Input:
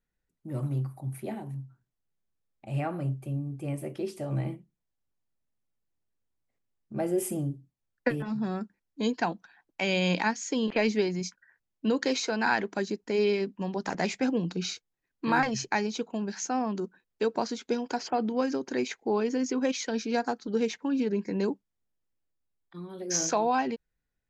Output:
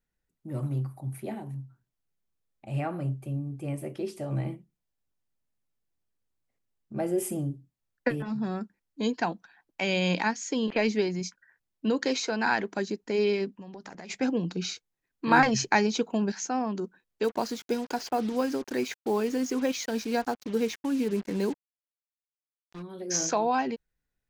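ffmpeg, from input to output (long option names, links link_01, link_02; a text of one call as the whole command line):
ffmpeg -i in.wav -filter_complex "[0:a]asplit=3[link_01][link_02][link_03];[link_01]afade=type=out:start_time=13.5:duration=0.02[link_04];[link_02]acompressor=threshold=-39dB:ratio=12:attack=3.2:release=140:knee=1:detection=peak,afade=type=in:start_time=13.5:duration=0.02,afade=type=out:start_time=14.09:duration=0.02[link_05];[link_03]afade=type=in:start_time=14.09:duration=0.02[link_06];[link_04][link_05][link_06]amix=inputs=3:normalize=0,asettb=1/sr,asplit=3[link_07][link_08][link_09];[link_07]atrim=end=15.314[link_10];[link_08]atrim=start=15.31:end=16.32,asetpts=PTS-STARTPTS,afade=type=in:duration=0.004:curve=qsin,afade=type=out:start_time=1.006:duration=0.004:curve=qsin,acontrast=27[link_11];[link_09]atrim=start=16.316[link_12];[link_10][link_11]acrossfade=duration=0.004:curve1=hsin:curve2=qsin[link_13];[link_13][link_12]acrossfade=duration=0.004:curve1=qsin:curve2=hsin,asplit=3[link_14][link_15][link_16];[link_14]afade=type=out:start_time=17.23:duration=0.02[link_17];[link_15]acrusher=bits=6:mix=0:aa=0.5,afade=type=in:start_time=17.23:duration=0.02,afade=type=out:start_time=22.81:duration=0.02[link_18];[link_16]afade=type=in:start_time=22.81:duration=0.02[link_19];[link_17][link_18][link_19]amix=inputs=3:normalize=0" out.wav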